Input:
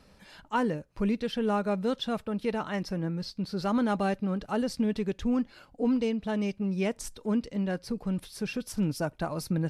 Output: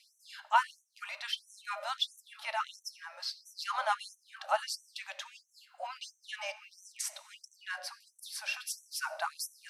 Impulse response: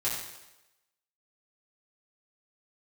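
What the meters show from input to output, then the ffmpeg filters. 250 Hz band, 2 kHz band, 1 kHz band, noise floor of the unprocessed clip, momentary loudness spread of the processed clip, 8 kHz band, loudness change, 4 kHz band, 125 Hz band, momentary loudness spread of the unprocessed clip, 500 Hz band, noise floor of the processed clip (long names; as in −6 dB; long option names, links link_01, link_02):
below −40 dB, +1.5 dB, +0.5 dB, −59 dBFS, 16 LU, +3.5 dB, −6.5 dB, +3.0 dB, below −40 dB, 6 LU, −13.5 dB, −73 dBFS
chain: -filter_complex "[0:a]asplit=2[link_01][link_02];[1:a]atrim=start_sample=2205,highshelf=frequency=5100:gain=-8[link_03];[link_02][link_03]afir=irnorm=-1:irlink=0,volume=-15dB[link_04];[link_01][link_04]amix=inputs=2:normalize=0,afftfilt=real='re*gte(b*sr/1024,520*pow(5800/520,0.5+0.5*sin(2*PI*1.5*pts/sr)))':imag='im*gte(b*sr/1024,520*pow(5800/520,0.5+0.5*sin(2*PI*1.5*pts/sr)))':win_size=1024:overlap=0.75,volume=3dB"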